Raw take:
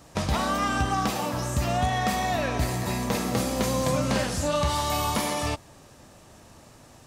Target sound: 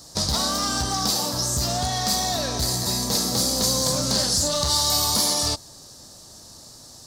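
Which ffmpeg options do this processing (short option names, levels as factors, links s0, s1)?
-af "asoftclip=type=hard:threshold=0.0841,highshelf=f=3400:t=q:w=3:g=10"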